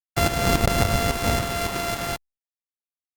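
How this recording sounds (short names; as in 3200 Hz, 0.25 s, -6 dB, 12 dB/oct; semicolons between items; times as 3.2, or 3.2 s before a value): a buzz of ramps at a fixed pitch in blocks of 64 samples; tremolo saw up 3.6 Hz, depth 65%; a quantiser's noise floor 6-bit, dither none; Opus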